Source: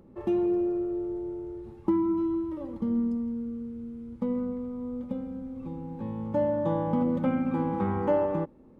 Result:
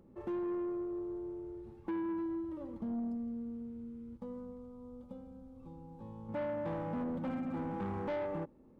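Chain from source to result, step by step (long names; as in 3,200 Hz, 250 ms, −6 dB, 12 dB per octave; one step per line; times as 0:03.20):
running median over 9 samples
0:04.17–0:06.29: octave-band graphic EQ 125/250/500/2,000 Hz −4/−8/−3/−12 dB
soft clipping −26.5 dBFS, distortion −12 dB
level −6.5 dB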